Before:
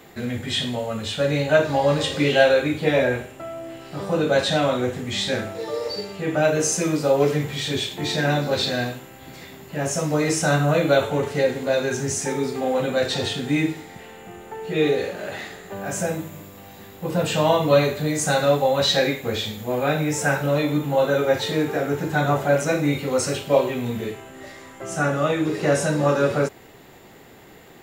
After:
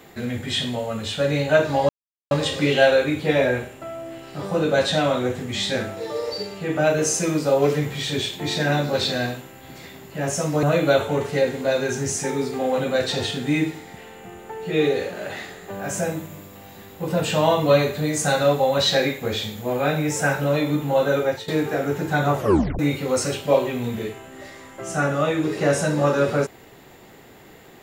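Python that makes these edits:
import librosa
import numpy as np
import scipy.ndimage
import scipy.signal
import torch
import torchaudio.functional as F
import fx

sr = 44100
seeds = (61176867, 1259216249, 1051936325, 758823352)

y = fx.edit(x, sr, fx.insert_silence(at_s=1.89, length_s=0.42),
    fx.cut(start_s=10.21, length_s=0.44),
    fx.fade_out_to(start_s=21.21, length_s=0.29, floor_db=-16.0),
    fx.tape_stop(start_s=22.4, length_s=0.41), tone=tone)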